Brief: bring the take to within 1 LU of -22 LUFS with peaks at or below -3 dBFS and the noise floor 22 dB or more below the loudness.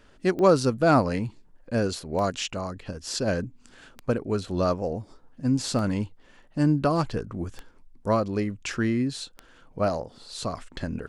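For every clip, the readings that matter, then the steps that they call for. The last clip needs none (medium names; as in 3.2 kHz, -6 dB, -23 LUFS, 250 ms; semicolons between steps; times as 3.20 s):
clicks found 6; loudness -27.0 LUFS; peak level -6.0 dBFS; loudness target -22.0 LUFS
-> de-click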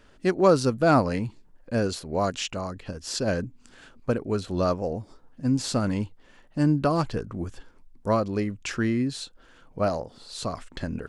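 clicks found 0; loudness -27.0 LUFS; peak level -6.0 dBFS; loudness target -22.0 LUFS
-> trim +5 dB; peak limiter -3 dBFS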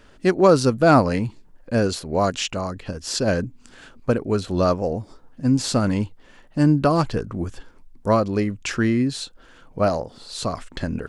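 loudness -22.0 LUFS; peak level -3.0 dBFS; noise floor -51 dBFS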